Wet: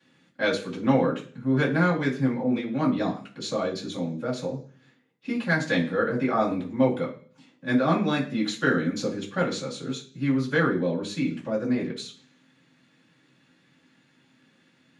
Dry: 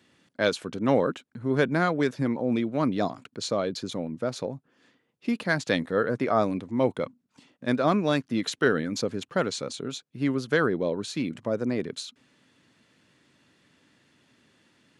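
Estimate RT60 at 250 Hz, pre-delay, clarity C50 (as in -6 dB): 0.55 s, 3 ms, 10.0 dB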